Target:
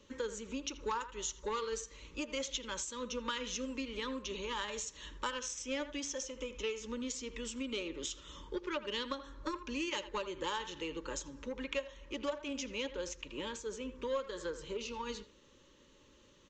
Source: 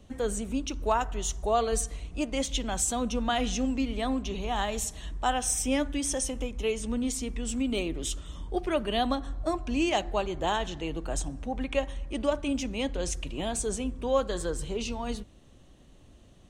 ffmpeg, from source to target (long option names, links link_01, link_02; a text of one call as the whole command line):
ffmpeg -i in.wav -filter_complex "[0:a]bass=frequency=250:gain=-15,treble=frequency=4000:gain=1,aeval=exprs='0.237*(cos(1*acos(clip(val(0)/0.237,-1,1)))-cos(1*PI/2))+0.0211*(cos(5*acos(clip(val(0)/0.237,-1,1)))-cos(5*PI/2))+0.0266*(cos(7*acos(clip(val(0)/0.237,-1,1)))-cos(7*PI/2))':channel_layout=same,asuperstop=centerf=710:order=12:qfactor=2.9,asplit=2[link_01][link_02];[link_02]adelay=80,highpass=300,lowpass=3400,asoftclip=type=hard:threshold=-22dB,volume=-14dB[link_03];[link_01][link_03]amix=inputs=2:normalize=0,acompressor=threshold=-41dB:ratio=3,aresample=16000,aresample=44100,asplit=3[link_04][link_05][link_06];[link_04]afade=type=out:start_time=12.91:duration=0.02[link_07];[link_05]adynamicequalizer=threshold=0.001:dfrequency=3000:dqfactor=0.7:tfrequency=3000:tqfactor=0.7:attack=5:release=100:ratio=0.375:range=2.5:mode=cutabove:tftype=highshelf,afade=type=in:start_time=12.91:duration=0.02,afade=type=out:start_time=14.93:duration=0.02[link_08];[link_06]afade=type=in:start_time=14.93:duration=0.02[link_09];[link_07][link_08][link_09]amix=inputs=3:normalize=0,volume=3.5dB" out.wav